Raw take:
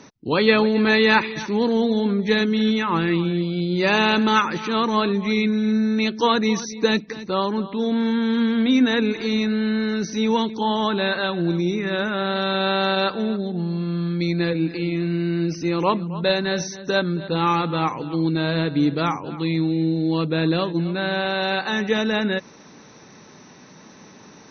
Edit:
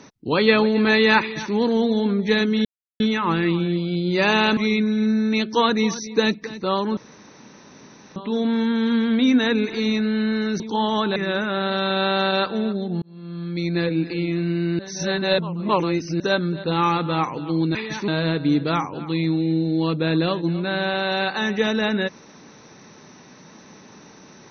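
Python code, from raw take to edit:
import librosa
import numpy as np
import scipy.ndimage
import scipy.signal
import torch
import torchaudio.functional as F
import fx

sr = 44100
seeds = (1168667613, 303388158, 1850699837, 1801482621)

y = fx.edit(x, sr, fx.duplicate(start_s=1.21, length_s=0.33, to_s=18.39),
    fx.insert_silence(at_s=2.65, length_s=0.35),
    fx.cut(start_s=4.22, length_s=1.01),
    fx.insert_room_tone(at_s=7.63, length_s=1.19),
    fx.cut(start_s=10.07, length_s=0.4),
    fx.cut(start_s=11.03, length_s=0.77),
    fx.fade_in_span(start_s=13.66, length_s=0.8),
    fx.reverse_span(start_s=15.43, length_s=1.41), tone=tone)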